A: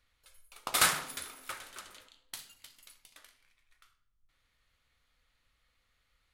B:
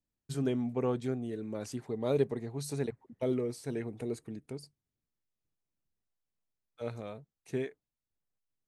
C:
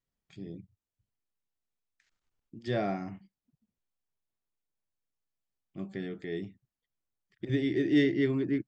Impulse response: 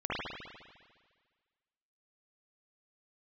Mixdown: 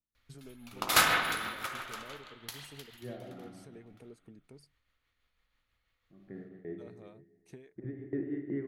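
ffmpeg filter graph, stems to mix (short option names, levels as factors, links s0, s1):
-filter_complex "[0:a]equalizer=f=8700:t=o:w=0.31:g=-9,adelay=150,volume=0.944,afade=t=out:st=2.79:d=0.53:silence=0.398107,asplit=2[s0][s1];[s1]volume=0.631[s2];[1:a]bandreject=f=7200:w=12,acompressor=threshold=0.01:ratio=10,volume=0.473,asplit=2[s3][s4];[2:a]lowpass=f=1600:w=0.5412,lowpass=f=1600:w=1.3066,aeval=exprs='val(0)*pow(10,-23*if(lt(mod(2.7*n/s,1),2*abs(2.7)/1000),1-mod(2.7*n/s,1)/(2*abs(2.7)/1000),(mod(2.7*n/s,1)-2*abs(2.7)/1000)/(1-2*abs(2.7)/1000))/20)':c=same,adelay=350,volume=0.631,asplit=2[s5][s6];[s6]volume=0.316[s7];[s4]apad=whole_len=398063[s8];[s5][s8]sidechaincompress=threshold=0.00178:ratio=8:attack=16:release=180[s9];[3:a]atrim=start_sample=2205[s10];[s2][s7]amix=inputs=2:normalize=0[s11];[s11][s10]afir=irnorm=-1:irlink=0[s12];[s0][s3][s9][s12]amix=inputs=4:normalize=0,tremolo=f=6.1:d=0.34"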